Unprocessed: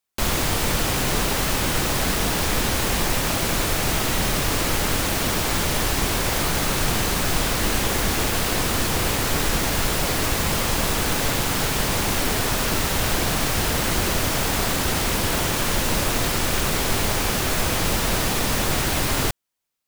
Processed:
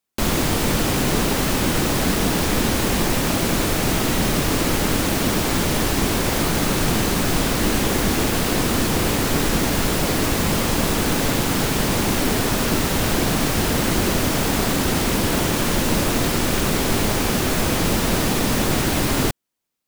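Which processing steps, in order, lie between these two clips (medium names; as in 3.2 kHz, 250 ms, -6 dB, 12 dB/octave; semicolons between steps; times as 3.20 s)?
peaking EQ 250 Hz +7.5 dB 1.8 oct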